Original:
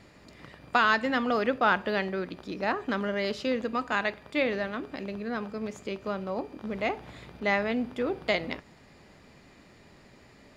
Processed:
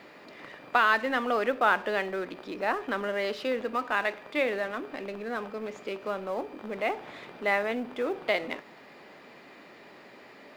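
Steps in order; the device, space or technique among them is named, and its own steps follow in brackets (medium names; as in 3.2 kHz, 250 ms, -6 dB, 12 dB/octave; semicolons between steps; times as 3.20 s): phone line with mismatched companding (band-pass 330–3500 Hz; companding laws mixed up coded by mu)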